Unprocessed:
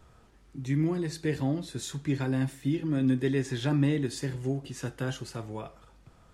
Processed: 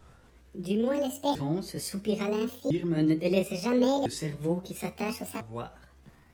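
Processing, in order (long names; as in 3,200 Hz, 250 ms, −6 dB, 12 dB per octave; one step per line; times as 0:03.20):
pitch shifter swept by a sawtooth +11.5 semitones, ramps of 1,352 ms
amplitude modulation by smooth noise, depth 60%
level +4.5 dB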